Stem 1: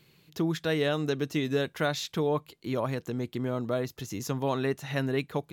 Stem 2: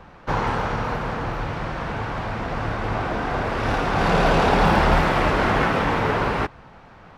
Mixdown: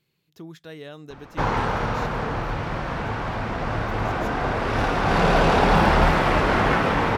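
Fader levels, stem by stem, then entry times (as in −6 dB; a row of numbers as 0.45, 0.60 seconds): −12.0, 0.0 decibels; 0.00, 1.10 seconds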